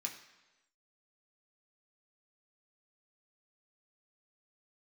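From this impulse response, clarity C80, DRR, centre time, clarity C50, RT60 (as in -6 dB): 11.0 dB, 0.5 dB, 21 ms, 9.0 dB, 1.1 s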